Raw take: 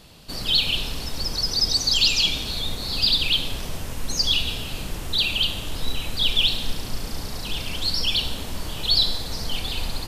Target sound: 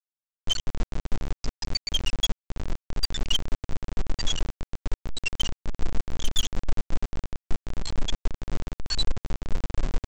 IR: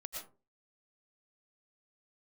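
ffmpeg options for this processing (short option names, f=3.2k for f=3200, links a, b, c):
-filter_complex "[0:a]acrossover=split=3000[a][b];[b]acompressor=threshold=-26dB:ratio=4:attack=1:release=60[c];[a][c]amix=inputs=2:normalize=0,afftfilt=real='re*gte(hypot(re,im),0.501)':imag='im*gte(hypot(re,im),0.501)':win_size=1024:overlap=0.75,bandreject=f=60:t=h:w=6,bandreject=f=120:t=h:w=6,bandreject=f=180:t=h:w=6,bandreject=f=240:t=h:w=6,bandreject=f=300:t=h:w=6,bandreject=f=360:t=h:w=6,aecho=1:1:6.6:0.31,asplit=2[d][e];[e]acompressor=threshold=-33dB:ratio=8,volume=-2dB[f];[d][f]amix=inputs=2:normalize=0,aeval=exprs='0.299*(cos(1*acos(clip(val(0)/0.299,-1,1)))-cos(1*PI/2))+0.075*(cos(4*acos(clip(val(0)/0.299,-1,1)))-cos(4*PI/2))':c=same,aresample=16000,acrusher=bits=4:mix=0:aa=0.000001,aresample=44100,volume=13.5dB,asoftclip=hard,volume=-13.5dB"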